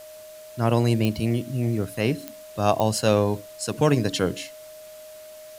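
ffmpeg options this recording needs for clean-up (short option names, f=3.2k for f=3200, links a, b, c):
-af "adeclick=t=4,bandreject=f=620:w=30,afftdn=nr=26:nf=-43"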